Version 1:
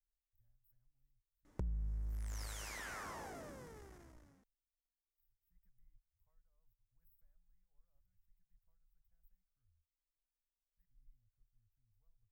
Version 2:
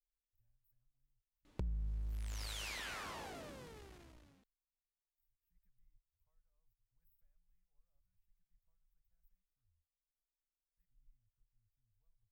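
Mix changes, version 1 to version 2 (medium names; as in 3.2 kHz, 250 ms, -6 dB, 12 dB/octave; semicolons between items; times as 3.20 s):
speech -3.5 dB; master: add high-order bell 3.3 kHz +9.5 dB 1.1 oct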